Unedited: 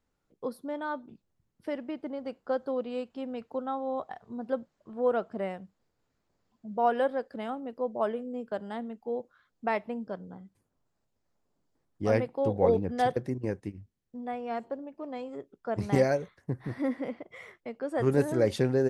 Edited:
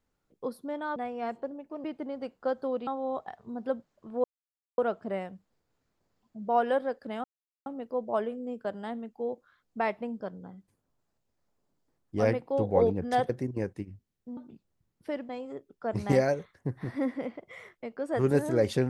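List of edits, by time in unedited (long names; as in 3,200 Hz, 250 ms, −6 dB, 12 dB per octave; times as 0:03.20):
0:00.96–0:01.88: swap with 0:14.24–0:15.12
0:02.91–0:03.70: remove
0:05.07: splice in silence 0.54 s
0:07.53: splice in silence 0.42 s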